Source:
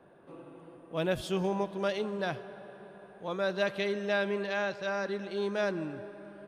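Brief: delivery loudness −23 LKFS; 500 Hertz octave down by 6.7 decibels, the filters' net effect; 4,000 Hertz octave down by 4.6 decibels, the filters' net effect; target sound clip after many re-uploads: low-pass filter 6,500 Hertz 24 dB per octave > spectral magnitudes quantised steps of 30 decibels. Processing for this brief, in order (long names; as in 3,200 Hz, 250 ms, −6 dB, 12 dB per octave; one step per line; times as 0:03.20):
low-pass filter 6,500 Hz 24 dB per octave
parametric band 500 Hz −9 dB
parametric band 4,000 Hz −5.5 dB
spectral magnitudes quantised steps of 30 dB
level +14.5 dB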